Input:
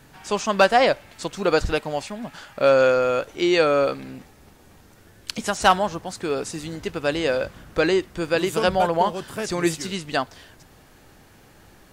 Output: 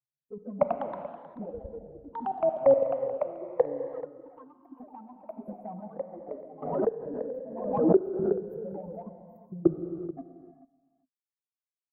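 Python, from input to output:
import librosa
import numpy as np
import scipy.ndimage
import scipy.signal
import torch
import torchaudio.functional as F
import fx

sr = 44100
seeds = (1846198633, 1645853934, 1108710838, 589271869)

y = fx.bin_expand(x, sr, power=3.0)
y = scipy.signal.sosfilt(scipy.signal.cheby2(4, 50, [1400.0, 8900.0], 'bandstop', fs=sr, output='sos'), y)
y = fx.env_lowpass_down(y, sr, base_hz=2100.0, full_db=-23.0)
y = scipy.signal.sosfilt(scipy.signal.butter(2, 73.0, 'highpass', fs=sr, output='sos'), y)
y = fx.peak_eq(y, sr, hz=3600.0, db=-10.0, octaves=2.1)
y = fx.level_steps(y, sr, step_db=21)
y = fx.env_flanger(y, sr, rest_ms=8.7, full_db=-27.5)
y = fx.echo_pitch(y, sr, ms=190, semitones=3, count=3, db_per_echo=-6.0)
y = y + 10.0 ** (-16.0 / 20.0) * np.pad(y, (int(434 * sr / 1000.0), 0))[:len(y)]
y = fx.rev_gated(y, sr, seeds[0], gate_ms=420, shape='flat', drr_db=7.0)
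y = fx.pre_swell(y, sr, db_per_s=54.0, at=(6.62, 9.05))
y = y * librosa.db_to_amplitude(6.0)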